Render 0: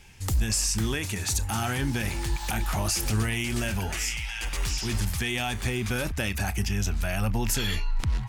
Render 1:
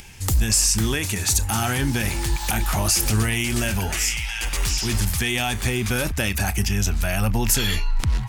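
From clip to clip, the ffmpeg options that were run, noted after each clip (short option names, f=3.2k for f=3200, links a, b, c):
-af "highshelf=f=6.7k:g=5.5,acompressor=mode=upward:threshold=-43dB:ratio=2.5,volume=5dB"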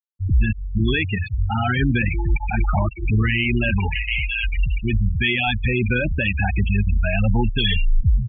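-af "alimiter=limit=-13.5dB:level=0:latency=1:release=26,lowpass=f=3.1k:t=q:w=1.6,afftfilt=real='re*gte(hypot(re,im),0.158)':imag='im*gte(hypot(re,im),0.158)':win_size=1024:overlap=0.75,volume=4.5dB"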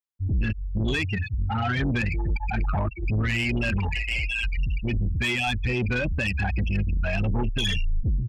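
-af "asoftclip=type=tanh:threshold=-17.5dB,volume=-2dB"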